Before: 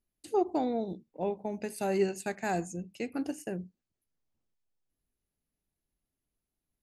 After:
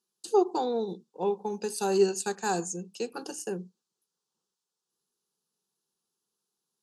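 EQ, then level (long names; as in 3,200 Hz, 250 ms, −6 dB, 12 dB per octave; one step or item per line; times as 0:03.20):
band-pass filter 260–6,300 Hz
high-shelf EQ 3,300 Hz +11.5 dB
phaser with its sweep stopped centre 420 Hz, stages 8
+6.5 dB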